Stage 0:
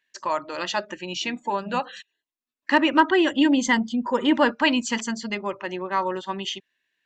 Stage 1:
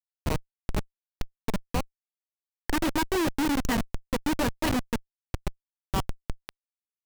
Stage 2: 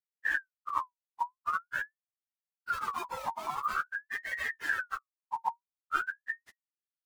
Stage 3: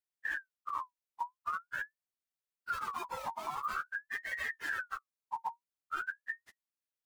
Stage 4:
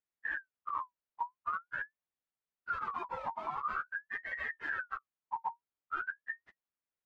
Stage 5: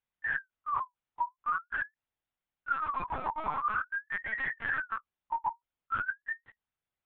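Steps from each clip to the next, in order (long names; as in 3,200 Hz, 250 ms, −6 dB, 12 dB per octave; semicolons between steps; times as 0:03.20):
comparator with hysteresis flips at −18.5 dBFS
partials spread apart or drawn together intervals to 128%; low shelf with overshoot 210 Hz +12 dB, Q 1.5; ring modulator whose carrier an LFO sweeps 1,400 Hz, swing 35%, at 0.46 Hz; level −7.5 dB
brickwall limiter −24.5 dBFS, peak gain reduction 9 dB; level −2 dB
low-pass filter 2,100 Hz 12 dB per octave; level +1 dB
linear-prediction vocoder at 8 kHz pitch kept; level +5 dB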